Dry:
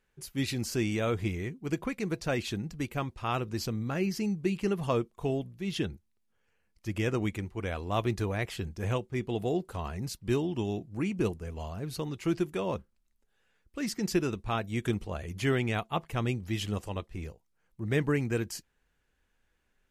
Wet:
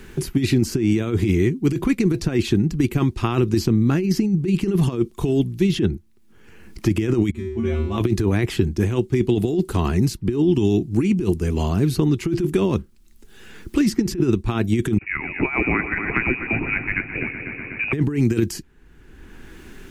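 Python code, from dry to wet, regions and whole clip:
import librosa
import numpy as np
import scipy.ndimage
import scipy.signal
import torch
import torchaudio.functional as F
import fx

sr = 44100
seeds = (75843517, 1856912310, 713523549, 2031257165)

y = fx.chain(x, sr, fx.lowpass(hz=3800.0, slope=6),
    fx.low_shelf(hz=430.0, db=7.0),
    fx.comb_fb(f0_hz=76.0, decay_s=0.51, harmonics='odd', damping=0.0, mix_pct=100), at=(7.31, 7.98))
y = fx.chain(y, sr, fx.highpass(hz=320.0, slope=12),
    fx.freq_invert(carrier_hz=2700),
    fx.echo_heads(ms=123, heads='first and second', feedback_pct=60, wet_db=-14.5), at=(14.98, 17.93))
y = fx.over_compress(y, sr, threshold_db=-32.0, ratio=-0.5)
y = fx.low_shelf_res(y, sr, hz=440.0, db=6.0, q=3.0)
y = fx.band_squash(y, sr, depth_pct=70)
y = F.gain(torch.from_numpy(y), 7.5).numpy()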